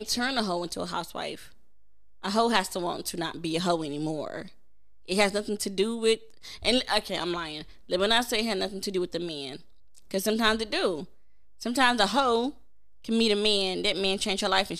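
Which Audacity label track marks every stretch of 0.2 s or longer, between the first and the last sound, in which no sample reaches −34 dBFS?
1.350000	2.240000	silence
4.420000	5.080000	silence
6.150000	6.450000	silence
7.620000	7.900000	silence
9.560000	9.980000	silence
11.040000	11.620000	silence
12.500000	13.060000	silence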